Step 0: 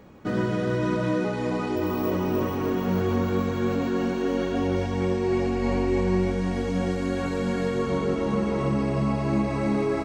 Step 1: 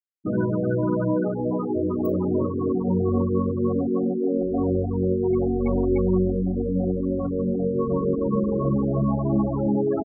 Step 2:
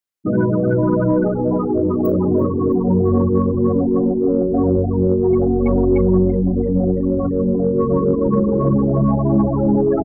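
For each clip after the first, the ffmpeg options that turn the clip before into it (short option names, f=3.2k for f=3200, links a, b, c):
-af "afftfilt=real='re*gte(hypot(re,im),0.112)':imag='im*gte(hypot(re,im),0.112)':win_size=1024:overlap=0.75,volume=2.5dB"
-filter_complex "[0:a]acontrast=83,asplit=7[a][b][c][d][e][f][g];[b]adelay=336,afreqshift=-100,volume=-19.5dB[h];[c]adelay=672,afreqshift=-200,volume=-23.5dB[i];[d]adelay=1008,afreqshift=-300,volume=-27.5dB[j];[e]adelay=1344,afreqshift=-400,volume=-31.5dB[k];[f]adelay=1680,afreqshift=-500,volume=-35.6dB[l];[g]adelay=2016,afreqshift=-600,volume=-39.6dB[m];[a][h][i][j][k][l][m]amix=inputs=7:normalize=0"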